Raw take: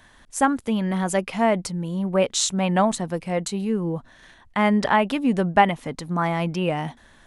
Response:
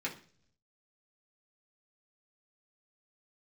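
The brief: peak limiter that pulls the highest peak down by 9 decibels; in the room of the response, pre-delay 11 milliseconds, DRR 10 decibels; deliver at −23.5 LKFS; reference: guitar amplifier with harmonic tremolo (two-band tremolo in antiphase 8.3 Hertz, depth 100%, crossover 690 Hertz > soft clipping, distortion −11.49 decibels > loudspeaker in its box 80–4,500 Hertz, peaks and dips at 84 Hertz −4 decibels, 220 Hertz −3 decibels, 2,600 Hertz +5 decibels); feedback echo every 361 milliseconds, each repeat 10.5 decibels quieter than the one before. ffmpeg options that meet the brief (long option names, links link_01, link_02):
-filter_complex "[0:a]alimiter=limit=-12dB:level=0:latency=1,aecho=1:1:361|722|1083:0.299|0.0896|0.0269,asplit=2[link_01][link_02];[1:a]atrim=start_sample=2205,adelay=11[link_03];[link_02][link_03]afir=irnorm=-1:irlink=0,volume=-13.5dB[link_04];[link_01][link_04]amix=inputs=2:normalize=0,acrossover=split=690[link_05][link_06];[link_05]aeval=exprs='val(0)*(1-1/2+1/2*cos(2*PI*8.3*n/s))':channel_layout=same[link_07];[link_06]aeval=exprs='val(0)*(1-1/2-1/2*cos(2*PI*8.3*n/s))':channel_layout=same[link_08];[link_07][link_08]amix=inputs=2:normalize=0,asoftclip=threshold=-23.5dB,highpass=80,equalizer=frequency=84:width_type=q:width=4:gain=-4,equalizer=frequency=220:width_type=q:width=4:gain=-3,equalizer=frequency=2600:width_type=q:width=4:gain=5,lowpass=frequency=4500:width=0.5412,lowpass=frequency=4500:width=1.3066,volume=9dB"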